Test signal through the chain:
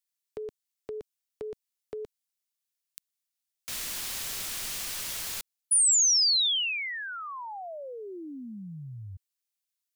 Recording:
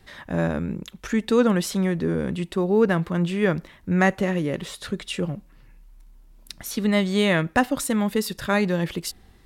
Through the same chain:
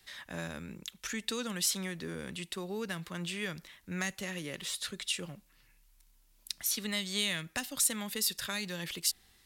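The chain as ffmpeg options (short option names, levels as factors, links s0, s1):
-filter_complex "[0:a]tiltshelf=f=1500:g=-10,acrossover=split=230|3000[s0][s1][s2];[s1]acompressor=threshold=0.0316:ratio=6[s3];[s0][s3][s2]amix=inputs=3:normalize=0,volume=0.447"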